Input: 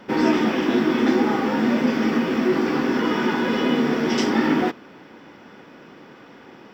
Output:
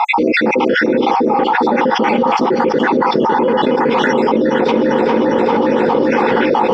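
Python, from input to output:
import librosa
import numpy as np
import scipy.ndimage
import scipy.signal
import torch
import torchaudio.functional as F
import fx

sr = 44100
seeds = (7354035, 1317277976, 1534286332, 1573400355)

p1 = fx.spec_dropout(x, sr, seeds[0], share_pct=64)
p2 = scipy.signal.sosfilt(scipy.signal.bessel(2, 3700.0, 'lowpass', norm='mag', fs=sr, output='sos'), p1)
p3 = fx.small_body(p2, sr, hz=(510.0, 850.0), ring_ms=30, db=15)
p4 = p3 + fx.echo_feedback(p3, sr, ms=403, feedback_pct=59, wet_db=-13, dry=0)
p5 = fx.env_flatten(p4, sr, amount_pct=100)
y = F.gain(torch.from_numpy(p5), -1.0).numpy()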